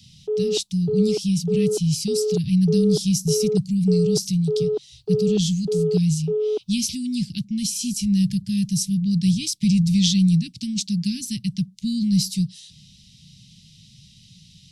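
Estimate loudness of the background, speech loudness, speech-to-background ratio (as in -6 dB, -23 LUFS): -26.0 LUFS, -22.5 LUFS, 3.5 dB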